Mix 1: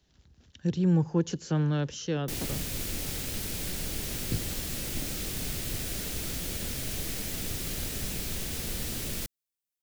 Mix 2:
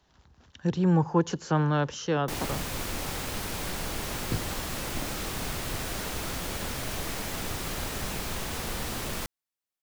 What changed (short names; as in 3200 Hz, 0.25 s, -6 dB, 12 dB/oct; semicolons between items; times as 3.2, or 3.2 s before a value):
background: add high shelf 9200 Hz -4 dB; master: add bell 1000 Hz +13.5 dB 1.5 oct